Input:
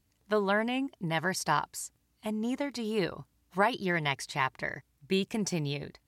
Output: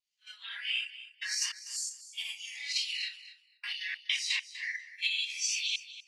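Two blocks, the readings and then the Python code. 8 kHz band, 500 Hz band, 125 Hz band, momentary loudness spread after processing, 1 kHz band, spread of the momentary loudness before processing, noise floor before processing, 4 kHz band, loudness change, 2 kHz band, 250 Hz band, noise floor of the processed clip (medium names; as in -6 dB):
+6.0 dB, under -40 dB, under -40 dB, 11 LU, -28.5 dB, 11 LU, -74 dBFS, +7.5 dB, -2.0 dB, -1.5 dB, under -40 dB, -68 dBFS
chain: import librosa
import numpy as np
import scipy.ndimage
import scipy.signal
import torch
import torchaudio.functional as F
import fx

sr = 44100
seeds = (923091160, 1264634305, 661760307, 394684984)

p1 = fx.phase_scramble(x, sr, seeds[0], window_ms=200)
p2 = fx.recorder_agc(p1, sr, target_db=-16.0, rise_db_per_s=27.0, max_gain_db=30)
p3 = fx.step_gate(p2, sr, bpm=99, pattern='xxxxxx..xx.xx.xx', floor_db=-60.0, edge_ms=4.5)
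p4 = scipy.signal.sosfilt(scipy.signal.butter(2, 5000.0, 'lowpass', fs=sr, output='sos'), p3)
p5 = fx.level_steps(p4, sr, step_db=15)
p6 = p4 + (p5 * 10.0 ** (3.0 / 20.0))
p7 = scipy.signal.sosfilt(scipy.signal.cheby2(4, 80, 440.0, 'highpass', fs=sr, output='sos'), p6)
p8 = fx.noise_reduce_blind(p7, sr, reduce_db=13)
p9 = fx.vibrato(p8, sr, rate_hz=1.5, depth_cents=40.0)
y = p9 + fx.echo_feedback(p9, sr, ms=245, feedback_pct=16, wet_db=-15, dry=0)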